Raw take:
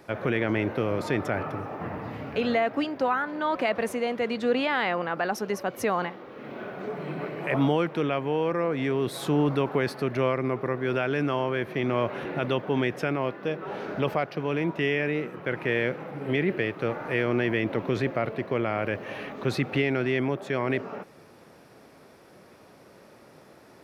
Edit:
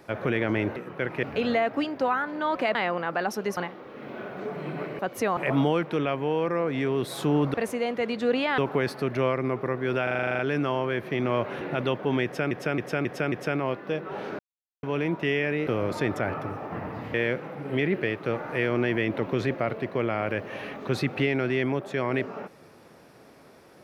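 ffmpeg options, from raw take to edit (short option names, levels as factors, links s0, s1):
-filter_complex "[0:a]asplit=26[s0][s1][s2][s3][s4][s5][s6][s7][s8][s9][s10][s11][s12][s13][s14][s15][s16][s17][s18][s19][s20][s21][s22][s23][s24][s25];[s0]atrim=end=0.762[s26];[s1]atrim=start=15.228:end=15.702[s27];[s2]atrim=start=2.228:end=3.752[s28];[s3]atrim=start=4.788:end=5.612[s29];[s4]atrim=start=5.988:end=7.412[s30];[s5]atrim=start=5.608:end=5.992[s31];[s6]atrim=start=7.408:end=9.582[s32];[s7]atrim=start=3.748:end=4.792[s33];[s8]atrim=start=9.578:end=11.072[s34];[s9]atrim=start=11.028:end=11.072[s35];[s10]atrim=start=11.028:end=11.072[s36];[s11]atrim=start=11.028:end=11.072[s37];[s12]atrim=start=11.028:end=11.072[s38];[s13]atrim=start=11.028:end=11.072[s39];[s14]atrim=start=11.028:end=11.072[s40];[s15]atrim=start=11.028:end=11.072[s41];[s16]atrim=start=11.028:end=11.072[s42];[s17]atrim=start=11.028:end=13.152[s43];[s18]atrim=start=12.878:end=13.152[s44];[s19]atrim=start=12.878:end=13.152[s45];[s20]atrim=start=12.878:end=13.152[s46];[s21]atrim=start=12.878:end=13.95,asetpts=PTS-STARTPTS,afade=t=out:st=1.068:d=0.004:c=hsin[s47];[s22]atrim=start=13.95:end=14.39,asetpts=PTS-STARTPTS,volume=0[s48];[s23]atrim=start=14.39:end=15.232,asetpts=PTS-STARTPTS,afade=t=in:d=0.004:c=hsin[s49];[s24]atrim=start=0.758:end=2.232[s50];[s25]atrim=start=15.698[s51];[s26][s27]acrossfade=d=0.004:c1=hsin:c2=hsin[s52];[s52][s28]acrossfade=d=0.004:c1=hsin:c2=hsin[s53];[s53][s29]acrossfade=d=0.004:c1=hsin:c2=hsin[s54];[s54][s30]acrossfade=d=0.004:c1=hsin:c2=hsin[s55];[s55][s31]acrossfade=d=0.004:c1=hsin:c2=hsin[s56];[s56][s32]acrossfade=d=0.004:c1=hsin:c2=hsin[s57];[s57][s33]acrossfade=d=0.004:c1=hsin:c2=hsin[s58];[s58][s34]acrossfade=d=0.004:c1=hsin:c2=hsin[s59];[s59][s35]acrossfade=d=0.004:c1=hsin:c2=hsin[s60];[s60][s36]acrossfade=d=0.004:c1=hsin:c2=hsin[s61];[s61][s37]acrossfade=d=0.004:c1=hsin:c2=hsin[s62];[s62][s38]acrossfade=d=0.004:c1=hsin:c2=hsin[s63];[s63][s39]acrossfade=d=0.004:c1=hsin:c2=hsin[s64];[s64][s40]acrossfade=d=0.004:c1=hsin:c2=hsin[s65];[s65][s41]acrossfade=d=0.004:c1=hsin:c2=hsin[s66];[s66][s42]acrossfade=d=0.004:c1=hsin:c2=hsin[s67];[s67][s43]acrossfade=d=0.004:c1=hsin:c2=hsin[s68];[s68][s44]acrossfade=d=0.004:c1=hsin:c2=hsin[s69];[s69][s45]acrossfade=d=0.004:c1=hsin:c2=hsin[s70];[s70][s46]acrossfade=d=0.004:c1=hsin:c2=hsin[s71];[s47][s48][s49]concat=n=3:v=0:a=1[s72];[s71][s72]acrossfade=d=0.004:c1=hsin:c2=hsin[s73];[s73][s50]acrossfade=d=0.004:c1=hsin:c2=hsin[s74];[s74][s51]acrossfade=d=0.004:c1=hsin:c2=hsin"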